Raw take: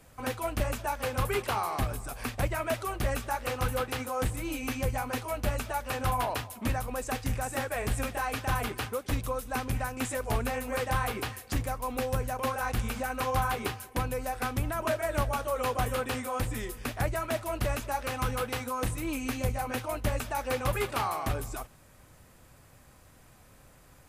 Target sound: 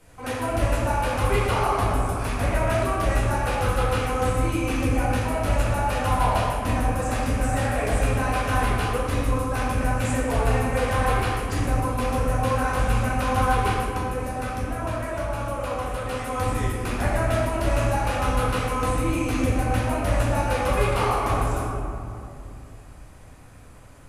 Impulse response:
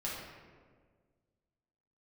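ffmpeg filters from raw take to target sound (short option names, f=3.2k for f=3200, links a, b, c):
-filter_complex "[0:a]asettb=1/sr,asplit=3[a][b][c];[a]atrim=end=13.844[d];[b]atrim=start=13.84:end=16.26,asetpts=PTS-STARTPTS,afade=t=in:d=0.004:c=qsin,afade=t=out:st=2.416:d=0.004:c=qsin,acompressor=threshold=-33dB:ratio=6[e];[c]atrim=start=16.256[f];[d][e]acrossfade=d=0.004:c1=hsin:c2=qsin[g];[g][f]acrossfade=d=0.004:c1=qsin:c2=hsin[h];[1:a]atrim=start_sample=2205,asetrate=23373,aresample=44100[i];[h][i]afir=irnorm=-1:irlink=0"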